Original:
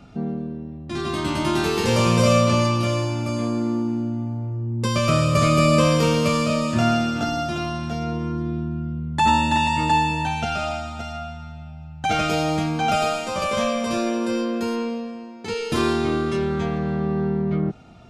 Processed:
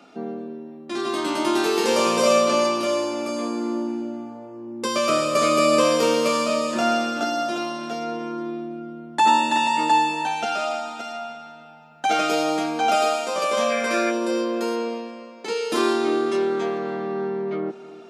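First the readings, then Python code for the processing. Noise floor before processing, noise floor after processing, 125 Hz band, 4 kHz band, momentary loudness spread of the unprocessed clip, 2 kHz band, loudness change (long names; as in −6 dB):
−37 dBFS, −42 dBFS, −20.0 dB, +0.5 dB, 12 LU, 0.0 dB, −0.5 dB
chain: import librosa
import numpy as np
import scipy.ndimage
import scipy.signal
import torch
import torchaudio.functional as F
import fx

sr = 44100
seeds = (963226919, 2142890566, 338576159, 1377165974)

y = fx.dynamic_eq(x, sr, hz=2400.0, q=1.1, threshold_db=-38.0, ratio=4.0, max_db=-3)
y = fx.echo_bbd(y, sr, ms=304, stages=4096, feedback_pct=63, wet_db=-17)
y = fx.spec_box(y, sr, start_s=13.7, length_s=0.41, low_hz=1300.0, high_hz=2600.0, gain_db=10)
y = scipy.signal.sosfilt(scipy.signal.butter(4, 280.0, 'highpass', fs=sr, output='sos'), y)
y = y * 10.0 ** (2.0 / 20.0)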